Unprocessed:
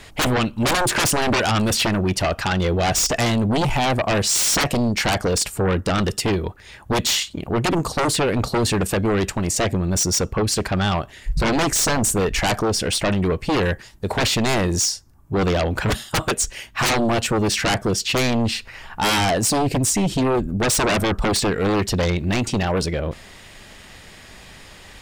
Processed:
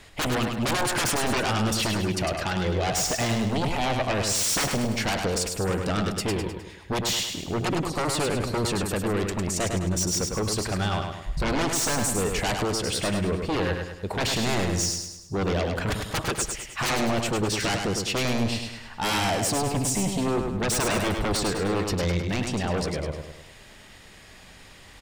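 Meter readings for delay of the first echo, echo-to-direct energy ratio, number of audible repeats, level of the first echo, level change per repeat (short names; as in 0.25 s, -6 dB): 0.103 s, -4.0 dB, 5, -5.0 dB, -6.5 dB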